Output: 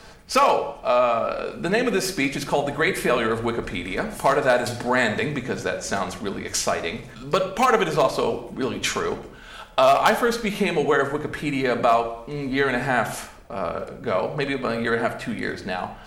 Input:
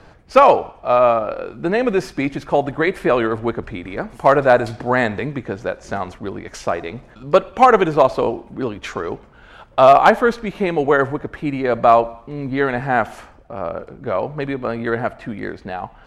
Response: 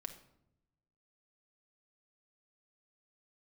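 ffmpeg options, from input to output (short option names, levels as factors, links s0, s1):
-filter_complex "[0:a]acompressor=threshold=0.1:ratio=2,crystalizer=i=5.5:c=0[s0];[1:a]atrim=start_sample=2205,afade=t=out:st=0.31:d=0.01,atrim=end_sample=14112[s1];[s0][s1]afir=irnorm=-1:irlink=0,volume=1.19"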